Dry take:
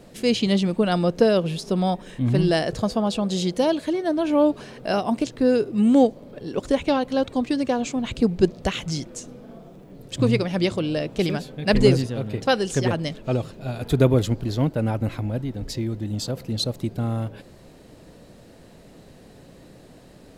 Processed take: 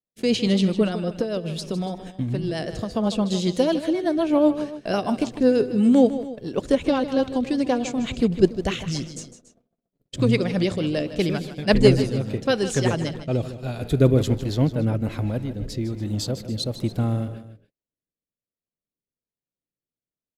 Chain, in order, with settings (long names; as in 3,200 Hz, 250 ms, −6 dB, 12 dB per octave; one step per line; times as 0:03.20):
noise gate −37 dBFS, range −52 dB
0:00.87–0:02.95: downward compressor 6 to 1, threshold −24 dBFS, peak gain reduction 11.5 dB
rotating-speaker cabinet horn 8 Hz, later 1.2 Hz, at 0:11.62
multi-tap delay 155/284 ms −12.5/−18 dB
level +2 dB